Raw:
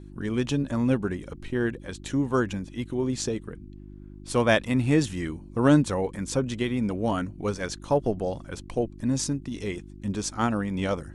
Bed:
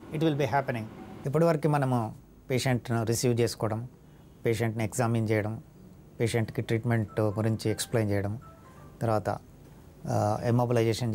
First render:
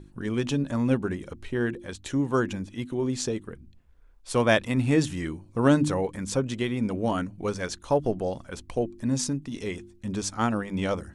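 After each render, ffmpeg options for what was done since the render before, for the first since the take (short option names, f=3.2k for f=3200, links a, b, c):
-af "bandreject=f=50:t=h:w=4,bandreject=f=100:t=h:w=4,bandreject=f=150:t=h:w=4,bandreject=f=200:t=h:w=4,bandreject=f=250:t=h:w=4,bandreject=f=300:t=h:w=4,bandreject=f=350:t=h:w=4"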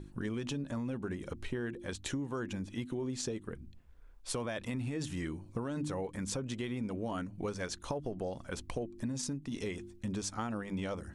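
-af "alimiter=limit=-18.5dB:level=0:latency=1:release=20,acompressor=threshold=-34dB:ratio=6"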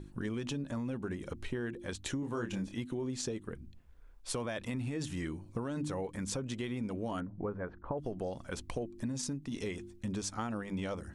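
-filter_complex "[0:a]asettb=1/sr,asplit=3[a][b][c];[a]atrim=end=2.204[d];[b]atrim=start=2.2:end=2.74,asetpts=PTS-STARTPTS,afade=t=in:d=0.004:c=qsin,afade=t=out:st=0.536:d=0.004:c=qsin,asplit=2[e][f];[f]adelay=26,volume=-5dB[g];[e][g]amix=inputs=2:normalize=0,atrim=end_sample=23814[h];[c]atrim=start=2.736[i];[d][h]acrossfade=d=0.004:c1=hsin:c2=qsin[j];[j][i]acrossfade=d=0.004:c1=qsin:c2=hsin,asettb=1/sr,asplit=3[k][l][m];[k]atrim=end=7.204[n];[l]atrim=start=7.2:end=7.98,asetpts=PTS-STARTPTS,afade=t=in:d=0.004:c=qsin,afade=t=out:st=0.776:d=0.004:c=qsin,lowpass=f=1.5k:w=0.5412,lowpass=f=1.5k:w=1.3066[o];[m]atrim=start=7.976[p];[n][o]acrossfade=d=0.004:c1=hsin:c2=qsin[q];[q][p]acrossfade=d=0.004:c1=qsin:c2=hsin"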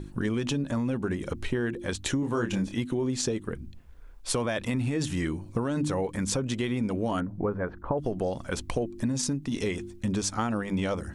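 -af "volume=8.5dB"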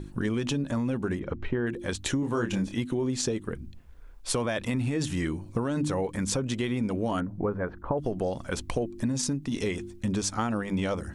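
-filter_complex "[0:a]asettb=1/sr,asplit=3[a][b][c];[a]atrim=end=1.194[d];[b]atrim=start=1.19:end=1.67,asetpts=PTS-STARTPTS,afade=t=in:d=0.004:c=qsin,afade=t=out:st=0.476:d=0.004:c=qsin,lowpass=2.1k[e];[c]atrim=start=1.666[f];[d][e]acrossfade=d=0.004:c1=hsin:c2=qsin[g];[g][f]acrossfade=d=0.004:c1=qsin:c2=hsin"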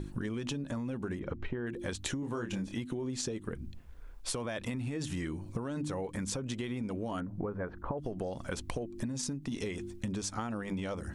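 -af "acompressor=threshold=-33dB:ratio=6"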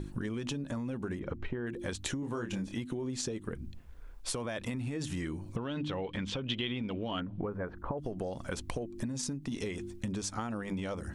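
-filter_complex "[0:a]asettb=1/sr,asplit=3[a][b][c];[a]atrim=end=5.564[d];[b]atrim=start=5.56:end=7.48,asetpts=PTS-STARTPTS,afade=t=in:d=0.004:c=qsin,afade=t=out:st=1.916:d=0.004:c=qsin,lowpass=f=3.2k:t=q:w=4.9[e];[c]atrim=start=7.476[f];[d][e]acrossfade=d=0.004:c1=hsin:c2=qsin[g];[g][f]acrossfade=d=0.004:c1=qsin:c2=hsin"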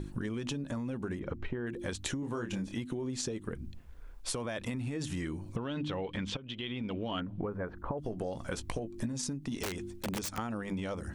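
-filter_complex "[0:a]asettb=1/sr,asplit=3[a][b][c];[a]atrim=end=8.004[d];[b]atrim=start=8:end=9.13,asetpts=PTS-STARTPTS,afade=t=in:d=0.004:c=qsin,afade=t=out:st=1.126:d=0.004:c=qsin,asplit=2[e][f];[f]adelay=18,volume=-11dB[g];[e][g]amix=inputs=2:normalize=0,atrim=end_sample=49833[h];[c]atrim=start=9.126[i];[d][h]acrossfade=d=0.004:c1=hsin:c2=qsin[j];[j][i]acrossfade=d=0.004:c1=qsin:c2=hsin,asettb=1/sr,asplit=3[k][l][m];[k]atrim=end=9.634[n];[l]atrim=start=9.63:end=10.38,asetpts=PTS-STARTPTS,afade=t=in:d=0.004:c=qsin,afade=t=out:st=0.746:d=0.004:c=qsin,aeval=exprs='(mod(29.9*val(0)+1,2)-1)/29.9':c=same[o];[m]atrim=start=10.376[p];[n][o]acrossfade=d=0.004:c1=hsin:c2=qsin[q];[q][p]acrossfade=d=0.004:c1=qsin:c2=hsin,asplit=2[r][s];[r]atrim=end=6.37,asetpts=PTS-STARTPTS,afade=t=out:st=6.366:d=0.004:c=hsin:silence=0.211349[t];[s]atrim=start=6.37,asetpts=PTS-STARTPTS,afade=t=in:d=0.52:silence=0.211349[u];[t][u]concat=n=2:v=0:a=1"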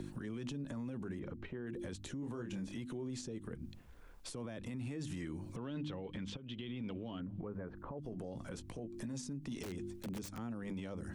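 -filter_complex "[0:a]acrossover=split=100|390[a][b][c];[a]acompressor=threshold=-56dB:ratio=4[d];[b]acompressor=threshold=-39dB:ratio=4[e];[c]acompressor=threshold=-49dB:ratio=4[f];[d][e][f]amix=inputs=3:normalize=0,alimiter=level_in=10.5dB:limit=-24dB:level=0:latency=1:release=11,volume=-10.5dB"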